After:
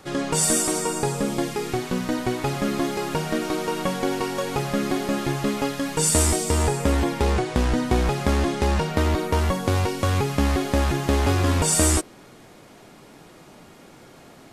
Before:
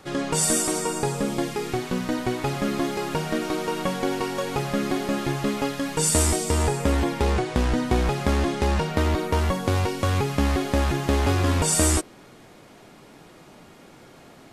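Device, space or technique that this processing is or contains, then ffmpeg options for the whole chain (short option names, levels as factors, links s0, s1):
exciter from parts: -filter_complex "[0:a]asplit=2[s0][s1];[s1]highpass=4000,asoftclip=type=tanh:threshold=0.0211,volume=0.251[s2];[s0][s2]amix=inputs=2:normalize=0,volume=1.12"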